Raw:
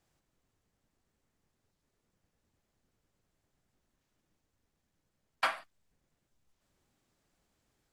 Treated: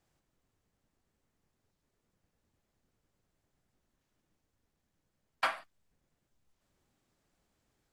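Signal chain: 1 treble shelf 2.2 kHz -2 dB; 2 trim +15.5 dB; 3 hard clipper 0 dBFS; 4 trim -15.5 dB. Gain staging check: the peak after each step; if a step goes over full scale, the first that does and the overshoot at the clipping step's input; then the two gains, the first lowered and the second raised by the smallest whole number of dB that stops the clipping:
-17.0 dBFS, -1.5 dBFS, -1.5 dBFS, -17.0 dBFS; nothing clips

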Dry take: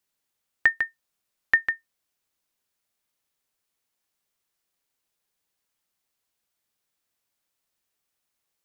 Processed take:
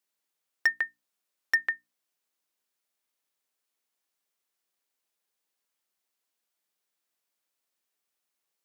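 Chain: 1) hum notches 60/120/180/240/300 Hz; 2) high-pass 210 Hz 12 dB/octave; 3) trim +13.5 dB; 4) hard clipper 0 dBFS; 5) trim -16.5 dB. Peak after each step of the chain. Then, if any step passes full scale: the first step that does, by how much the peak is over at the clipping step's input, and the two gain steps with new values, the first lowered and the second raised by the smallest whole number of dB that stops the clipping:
-7.5 dBFS, -6.5 dBFS, +7.0 dBFS, 0.0 dBFS, -16.5 dBFS; step 3, 7.0 dB; step 3 +6.5 dB, step 5 -9.5 dB

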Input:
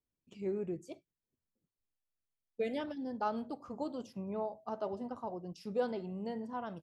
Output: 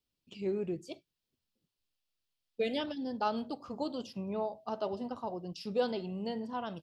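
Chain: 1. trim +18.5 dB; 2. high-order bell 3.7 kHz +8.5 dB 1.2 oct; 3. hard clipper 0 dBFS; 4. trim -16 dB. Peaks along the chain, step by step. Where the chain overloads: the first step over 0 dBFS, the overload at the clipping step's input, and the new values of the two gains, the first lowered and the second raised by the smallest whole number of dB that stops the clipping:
-3.0 dBFS, -2.5 dBFS, -2.5 dBFS, -18.5 dBFS; nothing clips

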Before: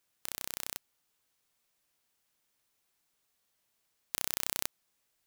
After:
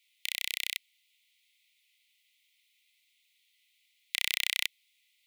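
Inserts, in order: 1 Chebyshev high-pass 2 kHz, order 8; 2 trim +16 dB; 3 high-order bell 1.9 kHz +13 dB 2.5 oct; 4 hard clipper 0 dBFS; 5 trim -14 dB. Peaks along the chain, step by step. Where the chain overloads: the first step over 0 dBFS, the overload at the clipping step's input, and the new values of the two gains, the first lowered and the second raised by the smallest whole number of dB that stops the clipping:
-7.5 dBFS, +8.5 dBFS, +8.5 dBFS, 0.0 dBFS, -14.0 dBFS; step 2, 8.5 dB; step 2 +7 dB, step 5 -5 dB

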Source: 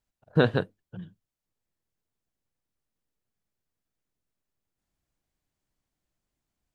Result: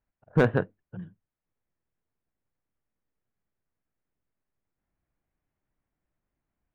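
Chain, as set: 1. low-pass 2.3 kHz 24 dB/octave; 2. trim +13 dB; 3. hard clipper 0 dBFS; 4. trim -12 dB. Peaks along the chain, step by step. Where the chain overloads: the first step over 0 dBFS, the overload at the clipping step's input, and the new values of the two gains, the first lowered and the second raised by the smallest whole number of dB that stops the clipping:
-8.0 dBFS, +5.0 dBFS, 0.0 dBFS, -12.0 dBFS; step 2, 5.0 dB; step 2 +8 dB, step 4 -7 dB

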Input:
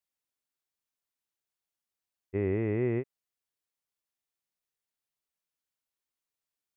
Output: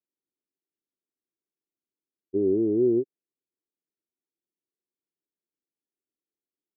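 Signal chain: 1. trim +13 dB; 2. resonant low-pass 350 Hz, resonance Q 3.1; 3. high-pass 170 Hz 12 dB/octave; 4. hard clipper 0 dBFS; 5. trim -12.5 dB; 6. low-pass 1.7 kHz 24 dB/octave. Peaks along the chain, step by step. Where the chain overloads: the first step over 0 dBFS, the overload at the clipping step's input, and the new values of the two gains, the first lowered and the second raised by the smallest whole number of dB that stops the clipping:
-6.0 dBFS, -1.0 dBFS, -1.5 dBFS, -1.5 dBFS, -14.0 dBFS, -14.0 dBFS; nothing clips

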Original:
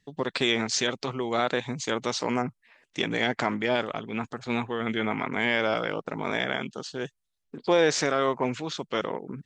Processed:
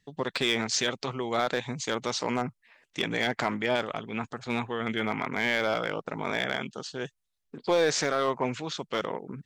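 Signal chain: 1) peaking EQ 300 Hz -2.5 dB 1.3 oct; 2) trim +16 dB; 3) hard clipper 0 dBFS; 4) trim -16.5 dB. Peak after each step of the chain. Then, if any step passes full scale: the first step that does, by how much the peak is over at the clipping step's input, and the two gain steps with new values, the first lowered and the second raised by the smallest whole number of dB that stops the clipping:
-9.5 dBFS, +6.5 dBFS, 0.0 dBFS, -16.5 dBFS; step 2, 6.5 dB; step 2 +9 dB, step 4 -9.5 dB

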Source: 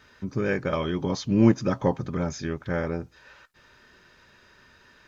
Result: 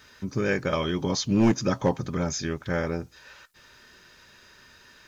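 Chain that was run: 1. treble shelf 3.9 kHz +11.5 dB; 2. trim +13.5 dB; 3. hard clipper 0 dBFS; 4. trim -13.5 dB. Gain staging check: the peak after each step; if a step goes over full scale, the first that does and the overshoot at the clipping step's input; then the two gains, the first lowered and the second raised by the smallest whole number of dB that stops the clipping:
-5.5 dBFS, +8.0 dBFS, 0.0 dBFS, -13.5 dBFS; step 2, 8.0 dB; step 2 +5.5 dB, step 4 -5.5 dB

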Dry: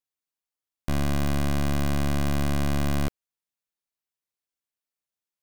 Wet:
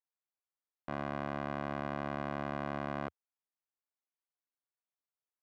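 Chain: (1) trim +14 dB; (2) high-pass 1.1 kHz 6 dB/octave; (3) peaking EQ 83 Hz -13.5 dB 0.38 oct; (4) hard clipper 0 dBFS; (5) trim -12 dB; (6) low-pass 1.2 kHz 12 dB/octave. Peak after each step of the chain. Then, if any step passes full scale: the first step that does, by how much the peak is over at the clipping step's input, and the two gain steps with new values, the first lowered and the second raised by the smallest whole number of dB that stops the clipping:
-9.0 dBFS, -3.5 dBFS, -3.5 dBFS, -3.5 dBFS, -15.5 dBFS, -24.0 dBFS; nothing clips

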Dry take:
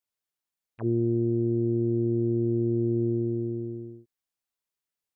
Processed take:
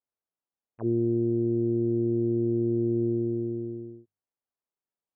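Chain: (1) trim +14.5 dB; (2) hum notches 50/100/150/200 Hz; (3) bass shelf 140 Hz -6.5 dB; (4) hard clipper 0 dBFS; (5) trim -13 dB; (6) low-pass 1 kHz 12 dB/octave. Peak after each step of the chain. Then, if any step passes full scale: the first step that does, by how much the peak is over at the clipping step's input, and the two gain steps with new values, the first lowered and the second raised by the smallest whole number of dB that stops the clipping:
-2.5 dBFS, -2.5 dBFS, -4.0 dBFS, -4.0 dBFS, -17.0 dBFS, -17.0 dBFS; nothing clips

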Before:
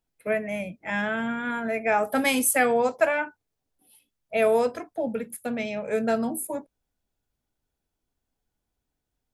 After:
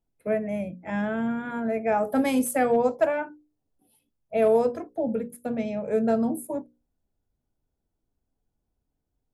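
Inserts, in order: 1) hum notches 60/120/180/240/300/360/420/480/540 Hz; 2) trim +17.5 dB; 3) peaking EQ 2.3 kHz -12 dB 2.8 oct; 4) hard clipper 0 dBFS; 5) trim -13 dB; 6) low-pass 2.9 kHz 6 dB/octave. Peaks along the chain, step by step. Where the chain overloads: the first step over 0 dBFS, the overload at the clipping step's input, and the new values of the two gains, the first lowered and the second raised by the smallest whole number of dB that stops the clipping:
-9.0 dBFS, +8.5 dBFS, +4.0 dBFS, 0.0 dBFS, -13.0 dBFS, -13.0 dBFS; step 2, 4.0 dB; step 2 +13.5 dB, step 5 -9 dB

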